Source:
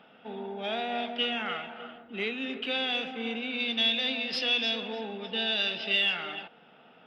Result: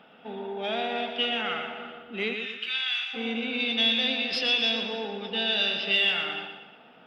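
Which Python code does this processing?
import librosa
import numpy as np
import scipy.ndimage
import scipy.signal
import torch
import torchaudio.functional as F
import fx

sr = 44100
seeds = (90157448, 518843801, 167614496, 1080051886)

y = fx.highpass(x, sr, hz=1300.0, slope=24, at=(2.33, 3.13), fade=0.02)
y = fx.echo_feedback(y, sr, ms=119, feedback_pct=45, wet_db=-7)
y = y * 10.0 ** (2.0 / 20.0)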